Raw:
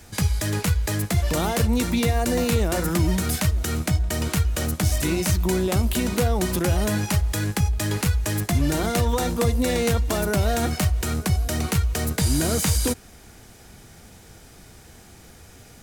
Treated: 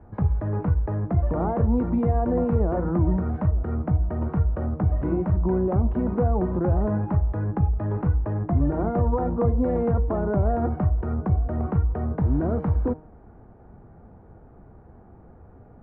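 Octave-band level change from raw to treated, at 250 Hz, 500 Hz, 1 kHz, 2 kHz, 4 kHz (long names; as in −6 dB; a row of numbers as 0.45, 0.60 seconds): 0.0 dB, −0.5 dB, −1.5 dB, −15.0 dB, below −35 dB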